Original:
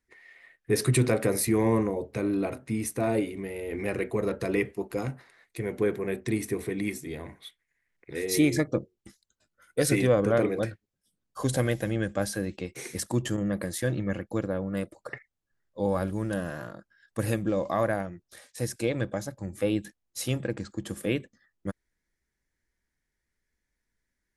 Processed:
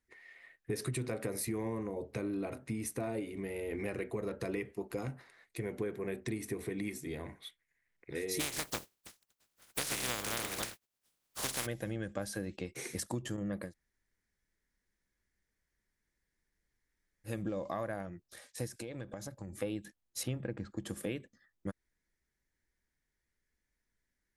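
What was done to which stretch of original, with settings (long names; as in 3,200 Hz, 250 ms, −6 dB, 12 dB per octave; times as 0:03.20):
0:08.39–0:11.65: compressing power law on the bin magnitudes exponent 0.21
0:13.66–0:17.32: fill with room tone, crossfade 0.16 s
0:18.67–0:19.56: downward compressor 12 to 1, threshold −35 dBFS
0:20.23–0:20.77: bass and treble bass +3 dB, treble −13 dB
whole clip: downward compressor 5 to 1, threshold −31 dBFS; level −3 dB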